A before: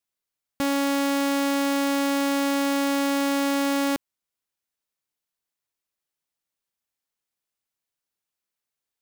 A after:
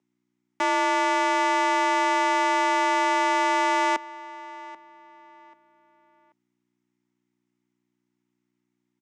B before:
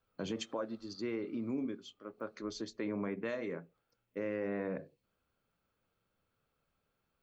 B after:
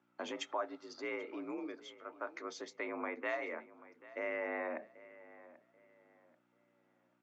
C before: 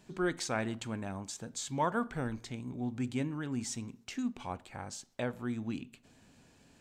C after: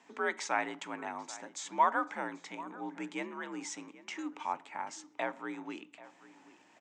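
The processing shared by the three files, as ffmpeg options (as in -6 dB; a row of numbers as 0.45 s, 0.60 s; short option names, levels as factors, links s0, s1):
-filter_complex "[0:a]aeval=exprs='val(0)+0.000794*(sin(2*PI*60*n/s)+sin(2*PI*2*60*n/s)/2+sin(2*PI*3*60*n/s)/3+sin(2*PI*4*60*n/s)/4+sin(2*PI*5*60*n/s)/5)':c=same,highpass=270,equalizer=f=300:t=q:w=4:g=-5,equalizer=f=420:t=q:w=4:g=-5,equalizer=f=840:t=q:w=4:g=9,equalizer=f=1200:t=q:w=4:g=4,equalizer=f=2000:t=q:w=4:g=8,equalizer=f=4300:t=q:w=4:g=-7,lowpass=f=7200:w=0.5412,lowpass=f=7200:w=1.3066,asplit=2[s0][s1];[s1]adelay=786,lowpass=f=3200:p=1,volume=0.126,asplit=2[s2][s3];[s3]adelay=786,lowpass=f=3200:p=1,volume=0.32,asplit=2[s4][s5];[s5]adelay=786,lowpass=f=3200:p=1,volume=0.32[s6];[s2][s4][s6]amix=inputs=3:normalize=0[s7];[s0][s7]amix=inputs=2:normalize=0,afreqshift=58"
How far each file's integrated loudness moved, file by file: +1.5 LU, -2.0 LU, 0.0 LU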